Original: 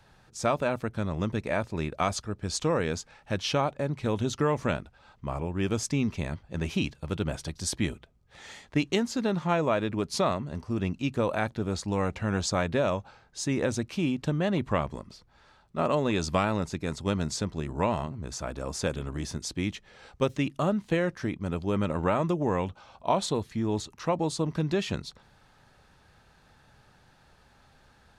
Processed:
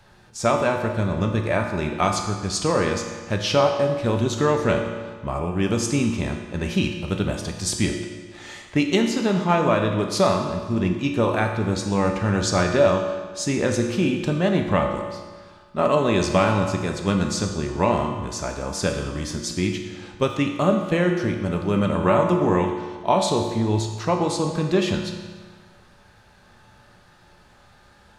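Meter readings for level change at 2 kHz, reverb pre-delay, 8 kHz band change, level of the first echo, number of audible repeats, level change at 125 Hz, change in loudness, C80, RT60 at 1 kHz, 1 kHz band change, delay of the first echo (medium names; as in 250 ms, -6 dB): +7.0 dB, 3 ms, +6.5 dB, no echo, no echo, +6.5 dB, +7.0 dB, 6.5 dB, 1.5 s, +7.5 dB, no echo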